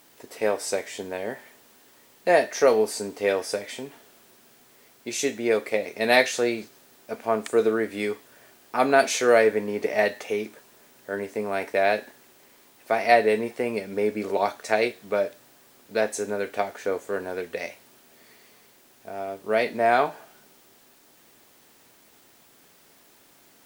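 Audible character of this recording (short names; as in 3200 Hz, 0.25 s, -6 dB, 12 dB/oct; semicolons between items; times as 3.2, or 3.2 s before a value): a quantiser's noise floor 10-bit, dither triangular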